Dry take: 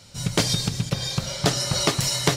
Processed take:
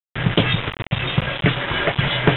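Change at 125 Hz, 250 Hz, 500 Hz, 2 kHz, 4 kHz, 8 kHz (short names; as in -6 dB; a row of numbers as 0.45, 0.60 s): +5.0 dB, +5.0 dB, +4.5 dB, +10.0 dB, +0.5 dB, under -40 dB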